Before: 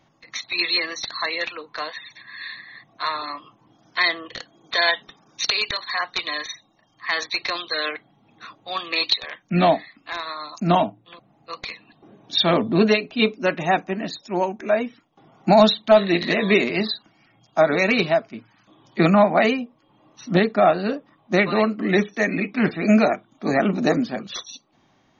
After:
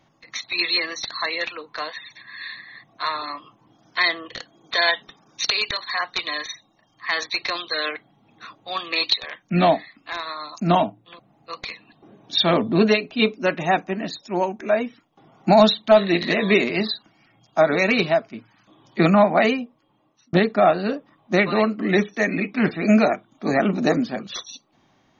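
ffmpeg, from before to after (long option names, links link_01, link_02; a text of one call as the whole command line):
ffmpeg -i in.wav -filter_complex "[0:a]asplit=2[link_01][link_02];[link_01]atrim=end=20.33,asetpts=PTS-STARTPTS,afade=type=out:start_time=19.54:duration=0.79[link_03];[link_02]atrim=start=20.33,asetpts=PTS-STARTPTS,afade=type=in:duration=0.004:curve=hsin[link_04];[link_03][link_04]concat=n=2:v=0:a=1" out.wav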